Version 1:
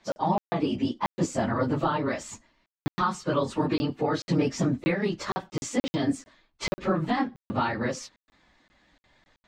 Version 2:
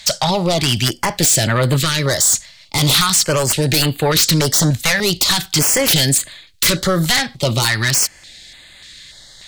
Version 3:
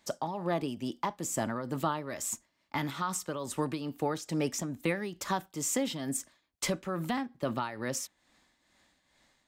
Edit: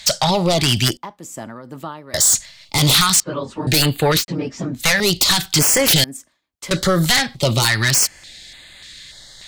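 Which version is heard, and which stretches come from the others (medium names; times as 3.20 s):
2
0.97–2.14 s: from 3
3.20–3.67 s: from 1
4.20–4.79 s: from 1, crossfade 0.10 s
6.04–6.71 s: from 3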